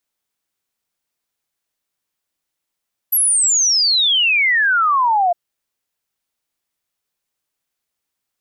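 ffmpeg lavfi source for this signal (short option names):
-f lavfi -i "aevalsrc='0.251*clip(min(t,2.21-t)/0.01,0,1)*sin(2*PI*12000*2.21/log(680/12000)*(exp(log(680/12000)*t/2.21)-1))':d=2.21:s=44100"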